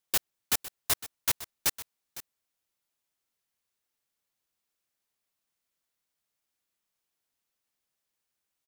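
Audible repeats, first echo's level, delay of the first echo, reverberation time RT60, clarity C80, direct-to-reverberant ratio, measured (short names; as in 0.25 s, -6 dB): 1, -15.5 dB, 0.507 s, none, none, none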